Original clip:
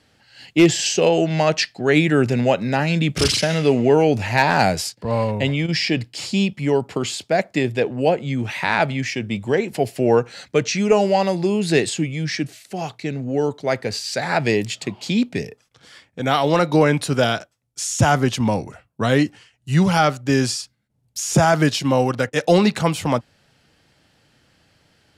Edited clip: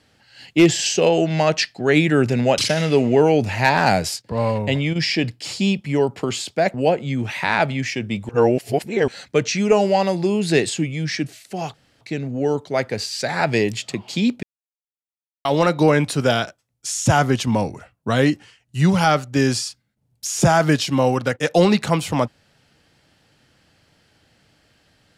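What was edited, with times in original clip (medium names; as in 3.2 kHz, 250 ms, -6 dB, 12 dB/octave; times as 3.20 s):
2.58–3.31 s: delete
7.47–7.94 s: delete
9.49–10.28 s: reverse
12.94 s: insert room tone 0.27 s
15.36–16.38 s: mute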